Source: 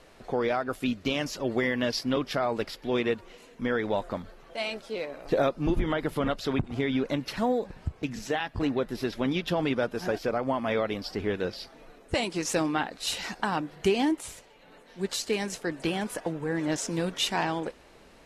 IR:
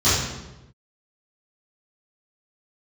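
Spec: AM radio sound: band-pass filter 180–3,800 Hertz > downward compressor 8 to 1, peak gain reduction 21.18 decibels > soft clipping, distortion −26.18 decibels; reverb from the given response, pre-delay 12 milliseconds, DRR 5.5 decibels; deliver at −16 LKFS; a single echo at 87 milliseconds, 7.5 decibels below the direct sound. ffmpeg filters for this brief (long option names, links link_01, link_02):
-filter_complex "[0:a]aecho=1:1:87:0.422,asplit=2[link_01][link_02];[1:a]atrim=start_sample=2205,adelay=12[link_03];[link_02][link_03]afir=irnorm=-1:irlink=0,volume=-25dB[link_04];[link_01][link_04]amix=inputs=2:normalize=0,highpass=180,lowpass=3800,acompressor=threshold=-39dB:ratio=8,asoftclip=threshold=-29dB,volume=27dB"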